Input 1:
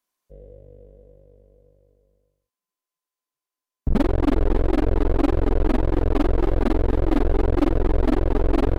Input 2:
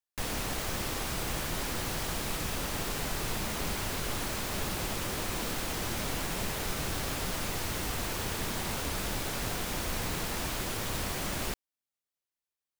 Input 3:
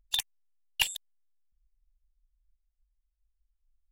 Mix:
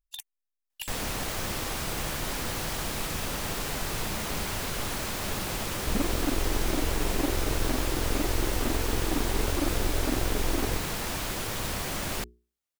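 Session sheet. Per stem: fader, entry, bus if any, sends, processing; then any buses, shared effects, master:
−9.5 dB, 2.00 s, no send, no processing
+2.0 dB, 0.70 s, no send, mains-hum notches 60/120/180/240/300/360/420 Hz
−14.5 dB, 0.00 s, no send, high-shelf EQ 7,000 Hz +10.5 dB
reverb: not used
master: no processing

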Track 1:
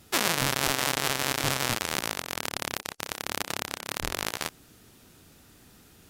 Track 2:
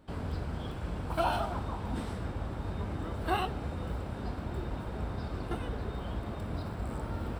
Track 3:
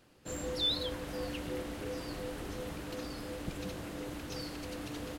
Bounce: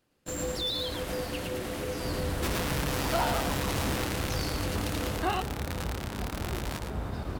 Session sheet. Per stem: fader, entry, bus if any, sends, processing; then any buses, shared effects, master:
−16.0 dB, 2.30 s, no send, echo send −7 dB, no processing
−9.5 dB, 1.95 s, no send, no echo send, no processing
−4.5 dB, 0.00 s, no send, echo send −4.5 dB, high-shelf EQ 10,000 Hz +5 dB; brickwall limiter −32 dBFS, peak gain reduction 10 dB; level that may rise only so fast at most 460 dB per second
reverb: not used
echo: single-tap delay 110 ms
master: leveller curve on the samples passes 3

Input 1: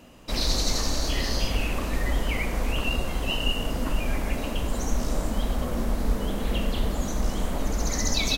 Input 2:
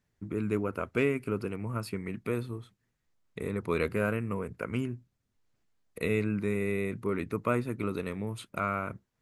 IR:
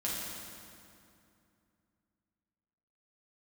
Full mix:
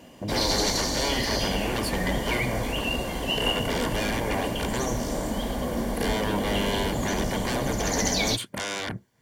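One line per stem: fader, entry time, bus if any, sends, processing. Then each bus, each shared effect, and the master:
+3.0 dB, 0.00 s, no send, no processing
−4.5 dB, 0.00 s, no send, parametric band 120 Hz +2.5 dB; brickwall limiter −20.5 dBFS, peak gain reduction 7 dB; sine wavefolder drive 15 dB, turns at −20.5 dBFS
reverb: not used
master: notch comb filter 1,300 Hz

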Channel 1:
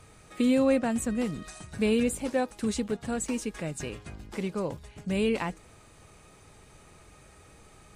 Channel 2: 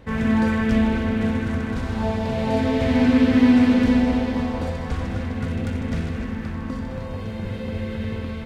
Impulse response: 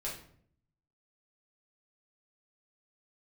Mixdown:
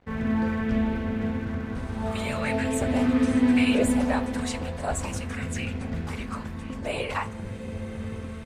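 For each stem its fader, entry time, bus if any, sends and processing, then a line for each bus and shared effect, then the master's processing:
−0.5 dB, 1.75 s, send −11 dB, random phases in short frames; auto-filter high-pass saw up 1 Hz 530–2,600 Hz
−5.5 dB, 0.00 s, no send, high-shelf EQ 4,400 Hz −11 dB; dead-zone distortion −46.5 dBFS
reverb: on, RT60 0.60 s, pre-delay 5 ms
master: no processing

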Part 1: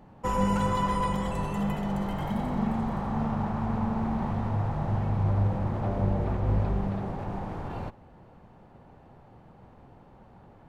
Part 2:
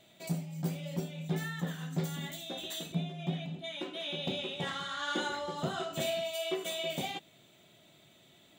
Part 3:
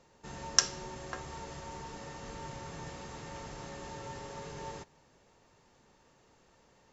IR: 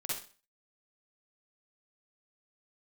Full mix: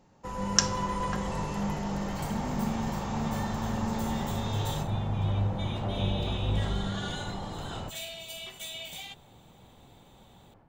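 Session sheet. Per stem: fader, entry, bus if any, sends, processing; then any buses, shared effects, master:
−11.0 dB, 0.00 s, no send, no processing
−7.0 dB, 1.95 s, no send, guitar amp tone stack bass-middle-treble 10-0-10
−4.0 dB, 0.00 s, no send, no processing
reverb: not used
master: automatic gain control gain up to 8 dB

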